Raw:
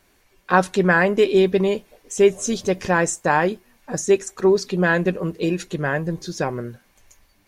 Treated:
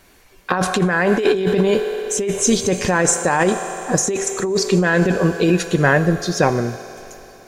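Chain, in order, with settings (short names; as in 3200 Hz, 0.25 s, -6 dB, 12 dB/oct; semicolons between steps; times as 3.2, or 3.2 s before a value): on a send at -11 dB: tone controls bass -15 dB, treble +4 dB + reverb RT60 3.4 s, pre-delay 3 ms; on the sum: negative-ratio compressor -21 dBFS, ratio -1; gain +5.5 dB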